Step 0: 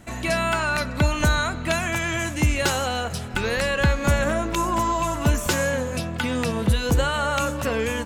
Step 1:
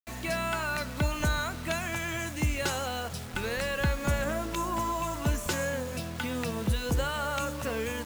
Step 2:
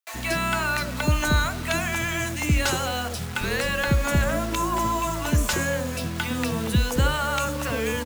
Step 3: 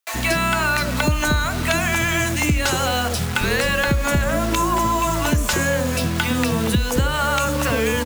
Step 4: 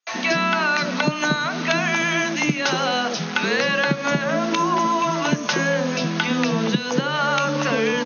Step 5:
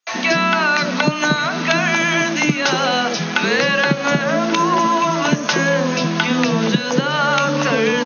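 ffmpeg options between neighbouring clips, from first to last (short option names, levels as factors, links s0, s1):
-af "acrusher=bits=5:mix=0:aa=0.000001,volume=0.398"
-filter_complex "[0:a]acrossover=split=570[s0][s1];[s0]adelay=70[s2];[s2][s1]amix=inputs=2:normalize=0,volume=2.24"
-af "acompressor=threshold=0.0631:ratio=6,volume=2.66"
-af "afftfilt=real='re*between(b*sr/4096,130,6600)':imag='im*between(b*sr/4096,130,6600)':win_size=4096:overlap=0.75"
-af "aecho=1:1:1135:0.168,volume=1.58"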